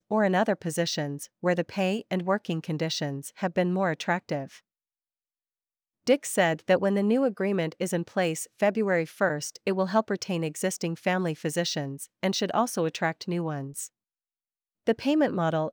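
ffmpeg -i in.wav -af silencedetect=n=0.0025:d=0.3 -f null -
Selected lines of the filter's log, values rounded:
silence_start: 4.60
silence_end: 6.07 | silence_duration: 1.47
silence_start: 13.88
silence_end: 14.87 | silence_duration: 0.99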